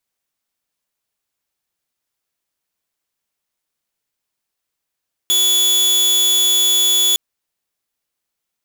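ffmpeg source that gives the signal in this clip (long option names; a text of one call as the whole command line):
ffmpeg -f lavfi -i "aevalsrc='0.335*(2*mod(3420*t,1)-1)':duration=1.86:sample_rate=44100" out.wav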